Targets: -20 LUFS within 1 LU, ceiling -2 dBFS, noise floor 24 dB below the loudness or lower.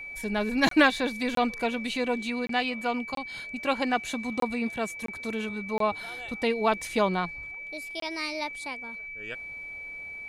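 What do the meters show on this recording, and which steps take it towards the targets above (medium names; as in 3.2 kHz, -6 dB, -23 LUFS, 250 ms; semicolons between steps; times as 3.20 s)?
dropouts 8; longest dropout 23 ms; steady tone 2.3 kHz; tone level -37 dBFS; loudness -29.0 LUFS; peak level -8.0 dBFS; loudness target -20.0 LUFS
-> interpolate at 0.69/1.35/2.47/3.15/4.40/5.06/5.78/8.00 s, 23 ms; band-stop 2.3 kHz, Q 30; trim +9 dB; peak limiter -2 dBFS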